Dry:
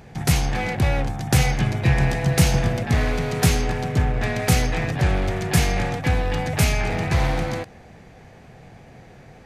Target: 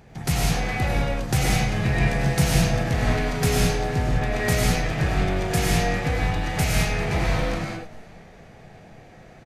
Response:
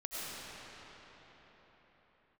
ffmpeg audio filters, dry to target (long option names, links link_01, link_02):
-filter_complex "[0:a]asplit=4[link_01][link_02][link_03][link_04];[link_02]adelay=409,afreqshift=-46,volume=-24dB[link_05];[link_03]adelay=818,afreqshift=-92,volume=-30.9dB[link_06];[link_04]adelay=1227,afreqshift=-138,volume=-37.9dB[link_07];[link_01][link_05][link_06][link_07]amix=inputs=4:normalize=0[link_08];[1:a]atrim=start_sample=2205,afade=type=out:start_time=0.27:duration=0.01,atrim=end_sample=12348[link_09];[link_08][link_09]afir=irnorm=-1:irlink=0"